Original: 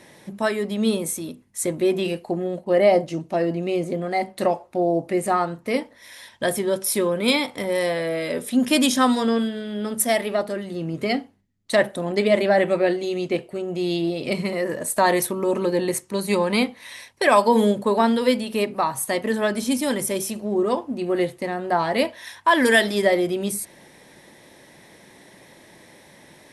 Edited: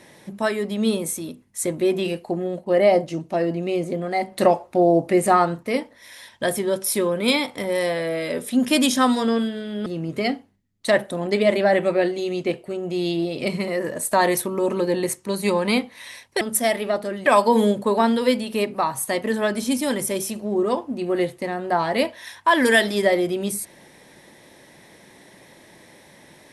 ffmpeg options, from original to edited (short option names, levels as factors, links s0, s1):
-filter_complex "[0:a]asplit=6[s0][s1][s2][s3][s4][s5];[s0]atrim=end=4.322[s6];[s1]atrim=start=4.318:end=5.632,asetpts=PTS-STARTPTS,volume=1.68[s7];[s2]atrim=start=5.628:end=9.862[s8];[s3]atrim=start=10.708:end=17.262[s9];[s4]atrim=start=9.858:end=10.712[s10];[s5]atrim=start=17.258[s11];[s6][s7]acrossfade=d=0.004:c1=hsin:c2=hsin[s12];[s12][s8]acrossfade=d=0.004:c1=hsin:c2=hsin[s13];[s13][s9]acrossfade=d=0.004:c1=hsin:c2=hsin[s14];[s14][s10]acrossfade=d=0.004:c1=hsin:c2=hsin[s15];[s15][s11]acrossfade=d=0.004:c1=hsin:c2=hsin"